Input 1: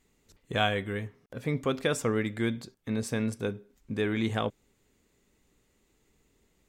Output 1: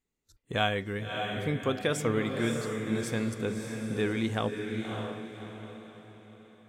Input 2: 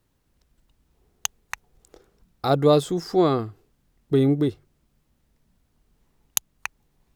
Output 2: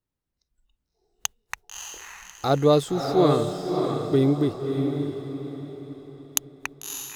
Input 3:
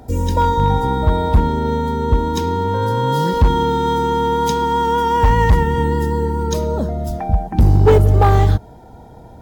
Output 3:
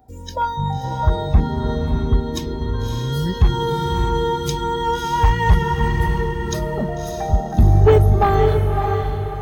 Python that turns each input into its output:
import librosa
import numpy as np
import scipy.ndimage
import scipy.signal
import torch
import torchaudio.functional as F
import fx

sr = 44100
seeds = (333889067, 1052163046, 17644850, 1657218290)

y = fx.noise_reduce_blind(x, sr, reduce_db=16)
y = fx.echo_diffused(y, sr, ms=600, feedback_pct=41, wet_db=-4.5)
y = y * librosa.db_to_amplitude(-1.0)